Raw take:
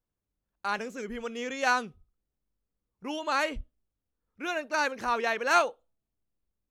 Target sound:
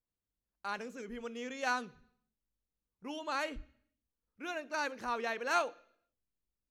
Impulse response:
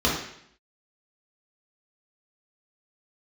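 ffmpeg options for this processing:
-filter_complex "[0:a]asplit=2[s0][s1];[s1]equalizer=f=1000:t=o:w=1.5:g=-9[s2];[1:a]atrim=start_sample=2205[s3];[s2][s3]afir=irnorm=-1:irlink=0,volume=0.0335[s4];[s0][s4]amix=inputs=2:normalize=0,volume=0.398"

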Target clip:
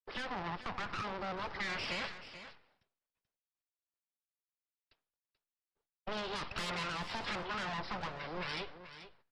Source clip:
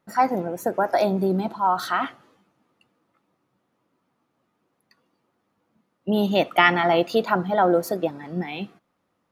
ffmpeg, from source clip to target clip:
-filter_complex "[0:a]agate=range=0.0224:threshold=0.00251:ratio=3:detection=peak,aresample=11025,aeval=exprs='abs(val(0))':c=same,aresample=44100,aeval=exprs='(tanh(7.08*val(0)+0.6)-tanh(0.6))/7.08':c=same,acrossover=split=150|630[s0][s1][s2];[s0]acompressor=threshold=0.0282:ratio=4[s3];[s1]acompressor=threshold=0.00251:ratio=4[s4];[s2]acompressor=threshold=0.01:ratio=4[s5];[s3][s4][s5]amix=inputs=3:normalize=0,alimiter=level_in=1.5:limit=0.0631:level=0:latency=1:release=12,volume=0.668,lowshelf=f=97:g=-11,asplit=2[s6][s7];[s7]aecho=0:1:434:0.237[s8];[s6][s8]amix=inputs=2:normalize=0,volume=1.68" -ar 48000 -c:a libopus -b:a 32k

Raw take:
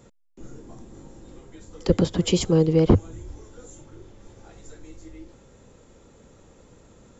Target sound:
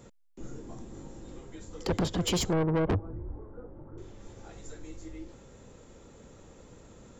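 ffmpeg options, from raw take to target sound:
-filter_complex "[0:a]asettb=1/sr,asplit=3[s0][s1][s2];[s0]atrim=end=2.534[s3];[s1]atrim=start=2.53:end=3.98,asetpts=PTS-STARTPTS,afade=t=in:d=0.004:c=qsin,afade=t=out:st=1.446:d=0.004:c=qsin,lowpass=f=1300:w=0.5412,lowpass=f=1300:w=1.3066[s4];[s2]atrim=start=3.976[s5];[s3][s4]acrossfade=d=0.004:c1=hsin:c2=qsin[s6];[s6][s5]acrossfade=d=0.004:c1=qsin:c2=hsin,asoftclip=type=tanh:threshold=0.0668"

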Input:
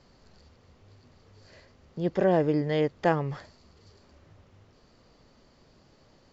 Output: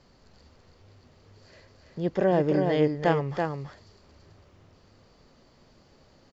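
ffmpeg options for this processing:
-af "aecho=1:1:332:0.596"

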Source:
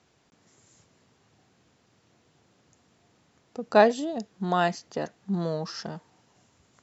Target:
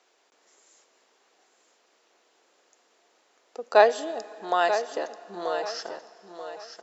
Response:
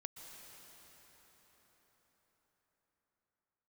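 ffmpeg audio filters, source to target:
-filter_complex "[0:a]highpass=f=390:w=0.5412,highpass=f=390:w=1.3066,aecho=1:1:935|1870|2805:0.335|0.104|0.0322,asplit=2[s0][s1];[1:a]atrim=start_sample=2205,asetrate=79380,aresample=44100[s2];[s1][s2]afir=irnorm=-1:irlink=0,volume=0.708[s3];[s0][s3]amix=inputs=2:normalize=0"

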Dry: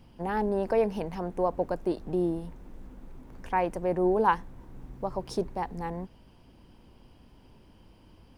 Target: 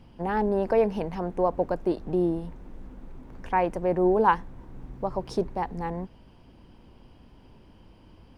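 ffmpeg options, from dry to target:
-af "highshelf=f=6700:g=-10,volume=1.41"

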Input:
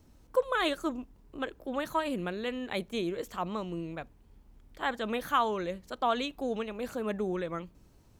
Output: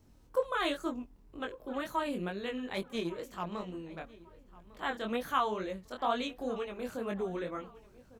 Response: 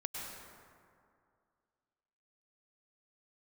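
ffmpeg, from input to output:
-filter_complex "[0:a]flanger=delay=20:depth=4.4:speed=2.1,asettb=1/sr,asplit=3[s0][s1][s2];[s0]atrim=end=2.744[s3];[s1]atrim=start=2.74:end=3.99,asetpts=PTS-STARTPTS,afade=t=in:d=0.004:c=qsin,afade=t=out:st=1.246:d=0.004:c=qsin,aeval=exprs='0.0841*(cos(1*acos(clip(val(0)/0.0841,-1,1)))-cos(1*PI/2))+0.00335*(cos(7*acos(clip(val(0)/0.0841,-1,1)))-cos(7*PI/2))':c=same[s4];[s2]atrim=start=3.986[s5];[s3][s4]acrossfade=d=0.004:c1=hsin:c2=qsin[s6];[s6][s5]acrossfade=d=0.004:c1=qsin:c2=hsin,asplit=2[s7][s8];[s8]adelay=1151,lowpass=f=3300:p=1,volume=0.1,asplit=2[s9][s10];[s10]adelay=1151,lowpass=f=3300:p=1,volume=0.36,asplit=2[s11][s12];[s12]adelay=1151,lowpass=f=3300:p=1,volume=0.36[s13];[s9][s11][s13]amix=inputs=3:normalize=0[s14];[s7][s14]amix=inputs=2:normalize=0"

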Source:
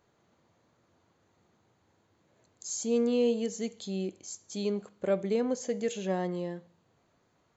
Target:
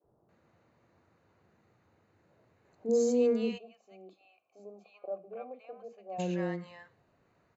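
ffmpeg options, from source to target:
-filter_complex "[0:a]bandreject=f=3300:w=5.8,acrossover=split=290|920[s0][s1][s2];[s0]adelay=40[s3];[s2]adelay=290[s4];[s3][s1][s4]amix=inputs=3:normalize=0,adynamicequalizer=threshold=0.00398:dfrequency=1000:dqfactor=1.2:tfrequency=1000:tqfactor=1.2:attack=5:release=100:ratio=0.375:range=2:mode=cutabove:tftype=bell,asplit=3[s5][s6][s7];[s5]afade=t=out:st=3.57:d=0.02[s8];[s6]asplit=3[s9][s10][s11];[s9]bandpass=f=730:t=q:w=8,volume=1[s12];[s10]bandpass=f=1090:t=q:w=8,volume=0.501[s13];[s11]bandpass=f=2440:t=q:w=8,volume=0.355[s14];[s12][s13][s14]amix=inputs=3:normalize=0,afade=t=in:st=3.57:d=0.02,afade=t=out:st=6.18:d=0.02[s15];[s7]afade=t=in:st=6.18:d=0.02[s16];[s8][s15][s16]amix=inputs=3:normalize=0,bass=f=250:g=-1,treble=f=4000:g=-13,volume=1.41"

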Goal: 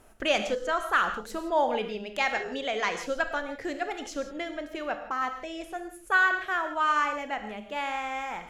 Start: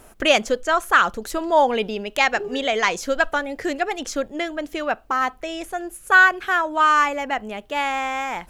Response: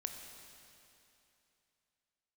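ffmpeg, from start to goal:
-filter_complex "[0:a]highshelf=f=8200:g=-6.5[s0];[1:a]atrim=start_sample=2205,atrim=end_sample=6615,asetrate=36603,aresample=44100[s1];[s0][s1]afir=irnorm=-1:irlink=0,volume=0.447"

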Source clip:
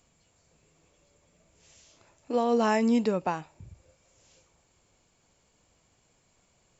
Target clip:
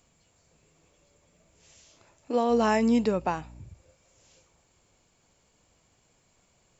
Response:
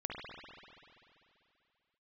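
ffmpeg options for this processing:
-filter_complex "[0:a]asettb=1/sr,asplit=3[s0][s1][s2];[s0]atrim=end=2.504[s3];[s1]atrim=start=2.5:end=3.62,asetpts=PTS-STARTPTS,afade=t=in:d=0.004:c=qsin,afade=t=out:st=1.116:d=0.004:c=qsin,aeval=exprs='val(0)+0.00447*(sin(2*PI*60*n/s)+sin(2*PI*2*60*n/s)/2+sin(2*PI*3*60*n/s)/3+sin(2*PI*4*60*n/s)/4+sin(2*PI*5*60*n/s)/5)':c=same[s4];[s2]atrim=start=3.616[s5];[s3][s4]acrossfade=d=0.004:c1=hsin:c2=qsin[s6];[s6][s5]acrossfade=d=0.004:c1=qsin:c2=hsin,volume=1.12"

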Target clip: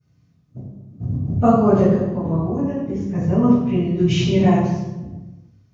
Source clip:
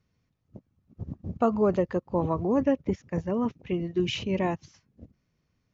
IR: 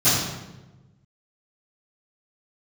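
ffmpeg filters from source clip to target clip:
-filter_complex "[0:a]asplit=3[s0][s1][s2];[s0]afade=t=out:st=1.84:d=0.02[s3];[s1]acompressor=threshold=0.0282:ratio=6,afade=t=in:st=1.84:d=0.02,afade=t=out:st=3.17:d=0.02[s4];[s2]afade=t=in:st=3.17:d=0.02[s5];[s3][s4][s5]amix=inputs=3:normalize=0[s6];[1:a]atrim=start_sample=2205[s7];[s6][s7]afir=irnorm=-1:irlink=0,volume=0.266"

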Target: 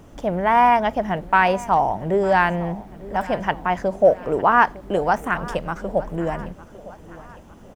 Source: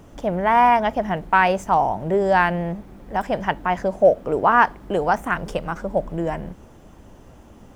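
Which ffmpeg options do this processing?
-af "aecho=1:1:906|1812|2718|3624:0.112|0.0539|0.0259|0.0124"

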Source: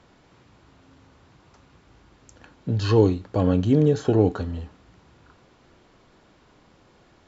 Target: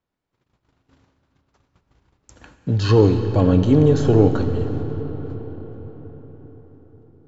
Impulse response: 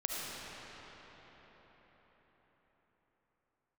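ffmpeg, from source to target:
-filter_complex "[0:a]agate=range=0.0282:threshold=0.00282:ratio=16:detection=peak,acontrast=25,asplit=2[s0][s1];[1:a]atrim=start_sample=2205,lowshelf=f=85:g=10[s2];[s1][s2]afir=irnorm=-1:irlink=0,volume=0.355[s3];[s0][s3]amix=inputs=2:normalize=0,volume=0.668"

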